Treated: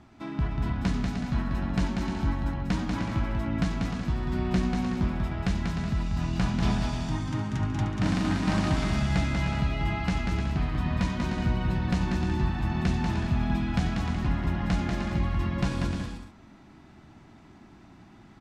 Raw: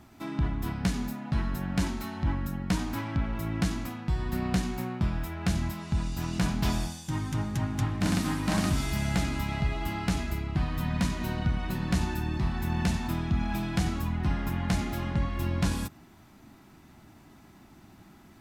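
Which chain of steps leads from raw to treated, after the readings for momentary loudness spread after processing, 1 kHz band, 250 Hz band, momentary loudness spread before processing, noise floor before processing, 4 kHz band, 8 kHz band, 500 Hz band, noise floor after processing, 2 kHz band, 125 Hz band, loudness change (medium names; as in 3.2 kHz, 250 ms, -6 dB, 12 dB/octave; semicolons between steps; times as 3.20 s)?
4 LU, +1.5 dB, +2.0 dB, 4 LU, -55 dBFS, 0.0 dB, -5.5 dB, +2.5 dB, -53 dBFS, +1.5 dB, +2.0 dB, +2.0 dB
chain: distance through air 89 m; on a send: bouncing-ball echo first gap 190 ms, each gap 0.6×, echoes 5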